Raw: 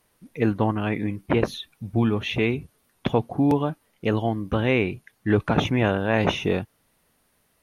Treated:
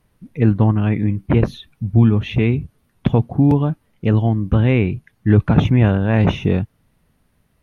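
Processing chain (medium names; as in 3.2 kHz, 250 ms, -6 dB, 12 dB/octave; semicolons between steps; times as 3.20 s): tone controls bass +13 dB, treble -6 dB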